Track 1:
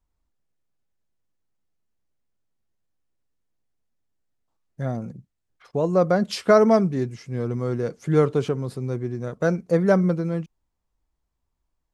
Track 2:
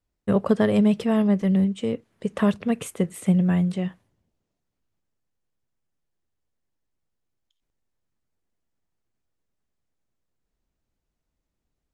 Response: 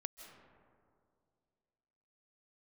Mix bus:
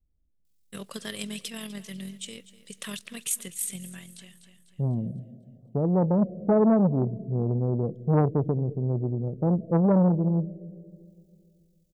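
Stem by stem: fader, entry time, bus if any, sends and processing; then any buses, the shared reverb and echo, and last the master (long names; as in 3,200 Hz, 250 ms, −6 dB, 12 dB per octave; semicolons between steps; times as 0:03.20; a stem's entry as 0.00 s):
+1.0 dB, 0.00 s, send −5 dB, no echo send, Butterworth low-pass 710 Hz 48 dB per octave
−6.5 dB, 0.45 s, send −19 dB, echo send −16.5 dB, spectral tilt +4.5 dB per octave; amplitude modulation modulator 43 Hz, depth 30%; automatic ducking −16 dB, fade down 1.15 s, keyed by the first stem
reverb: on, RT60 2.3 s, pre-delay 120 ms
echo: repeating echo 248 ms, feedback 44%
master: drawn EQ curve 190 Hz 0 dB, 790 Hz −12 dB, 3,600 Hz +4 dB; saturating transformer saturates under 490 Hz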